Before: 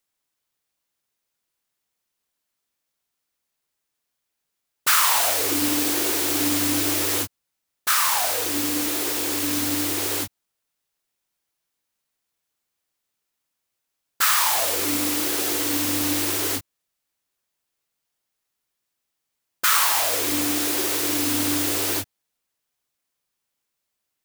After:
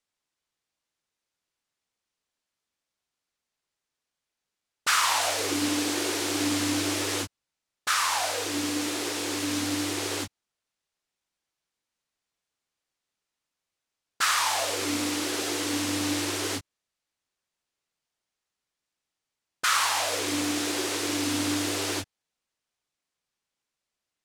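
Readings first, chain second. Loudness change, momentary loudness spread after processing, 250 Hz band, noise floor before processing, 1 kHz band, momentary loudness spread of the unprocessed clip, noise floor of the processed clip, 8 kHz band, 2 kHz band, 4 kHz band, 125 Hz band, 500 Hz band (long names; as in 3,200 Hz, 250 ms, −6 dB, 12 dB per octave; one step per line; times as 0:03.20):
−6.0 dB, 7 LU, −2.5 dB, −80 dBFS, −2.5 dB, 7 LU, below −85 dBFS, −6.0 dB, −2.5 dB, −3.0 dB, −2.5 dB, −2.5 dB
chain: low-pass filter 7,700 Hz 12 dB per octave
level −2.5 dB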